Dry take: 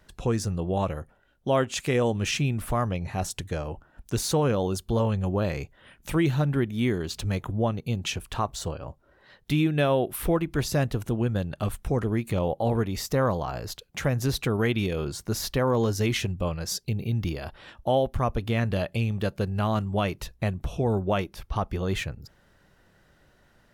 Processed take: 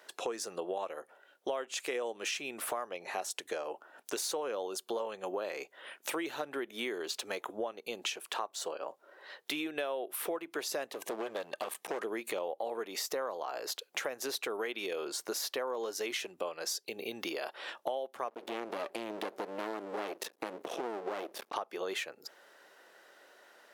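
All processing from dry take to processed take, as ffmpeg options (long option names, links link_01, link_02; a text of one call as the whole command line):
ffmpeg -i in.wav -filter_complex "[0:a]asettb=1/sr,asplit=3[link_01][link_02][link_03];[link_01]atrim=end=10.904[link_04];[link_02]atrim=start=10.9:end=12.01,asetpts=PTS-STARTPTS,afade=type=in:duration=0.004:curve=qsin,afade=type=out:start_time=1.106:duration=0.004:curve=qsin,asubboost=boost=3.5:cutoff=66,asuperstop=centerf=1400:order=20:qfactor=5.3,volume=27.5dB,asoftclip=hard,volume=-27.5dB[link_05];[link_03]atrim=start=12.006[link_06];[link_04][link_05]acrossfade=duration=0.004:curve1=hsin:curve2=qsin[link_07];[link_07][link_06]acrossfade=duration=0.004:curve1=qsin:curve2=hsin,asettb=1/sr,asplit=3[link_08][link_09][link_10];[link_08]atrim=end=18.284[link_11];[link_09]atrim=start=18.28:end=21.54,asetpts=PTS-STARTPTS,afade=type=in:duration=0.004:curve=qsin,afade=type=out:start_time=3.256:duration=0.004:curve=qsin,equalizer=frequency=260:width_type=o:width=2.4:gain=12,acompressor=threshold=-24dB:ratio=3:attack=3.2:release=140:knee=1:detection=peak,aeval=exprs='max(val(0),0)':channel_layout=same[link_12];[link_10]atrim=start=21.536[link_13];[link_11][link_12]acrossfade=duration=0.004:curve1=hsin:curve2=qsin[link_14];[link_14][link_13]acrossfade=duration=0.004:curve1=qsin:curve2=hsin,highpass=frequency=390:width=0.5412,highpass=frequency=390:width=1.3066,acompressor=threshold=-39dB:ratio=6,volume=5dB" out.wav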